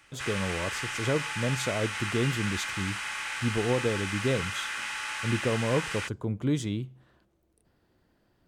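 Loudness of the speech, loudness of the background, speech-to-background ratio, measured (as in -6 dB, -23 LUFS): -31.5 LUFS, -33.0 LUFS, 1.5 dB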